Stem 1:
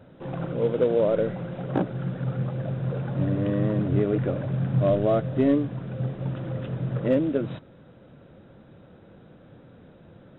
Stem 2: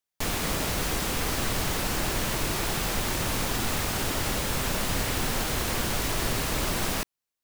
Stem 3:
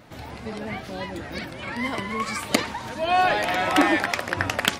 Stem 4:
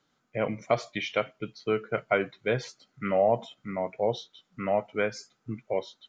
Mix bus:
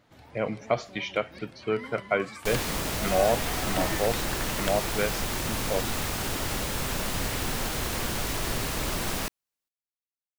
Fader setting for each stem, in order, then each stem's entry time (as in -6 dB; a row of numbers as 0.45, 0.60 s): off, -2.0 dB, -14.0 dB, -0.5 dB; off, 2.25 s, 0.00 s, 0.00 s